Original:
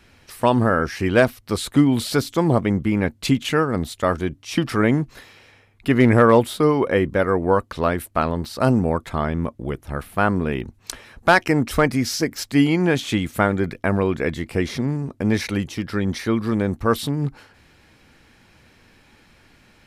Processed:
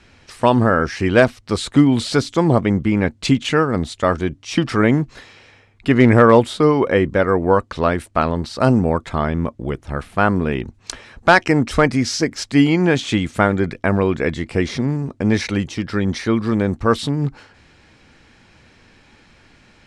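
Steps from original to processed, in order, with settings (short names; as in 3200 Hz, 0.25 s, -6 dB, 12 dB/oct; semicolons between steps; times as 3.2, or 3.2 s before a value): LPF 8400 Hz 24 dB/oct; gain +3 dB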